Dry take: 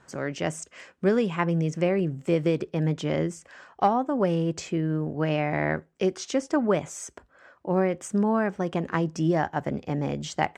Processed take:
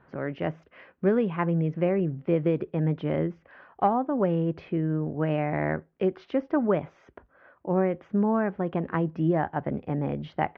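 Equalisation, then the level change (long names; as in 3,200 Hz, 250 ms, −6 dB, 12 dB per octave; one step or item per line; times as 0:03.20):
Gaussian smoothing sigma 2.4 samples
high-frequency loss of the air 260 metres
0.0 dB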